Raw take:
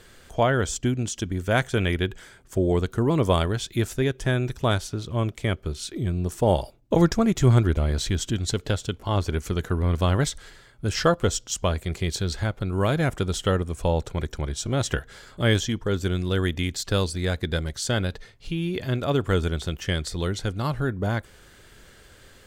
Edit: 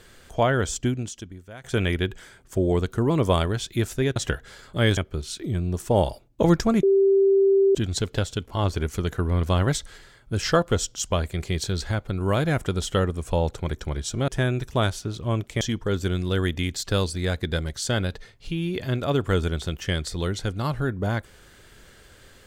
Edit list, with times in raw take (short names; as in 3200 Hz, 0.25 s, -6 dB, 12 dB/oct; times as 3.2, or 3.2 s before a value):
0.87–1.64 fade out quadratic, to -21.5 dB
4.16–5.49 swap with 14.8–15.61
7.35–8.27 bleep 391 Hz -14.5 dBFS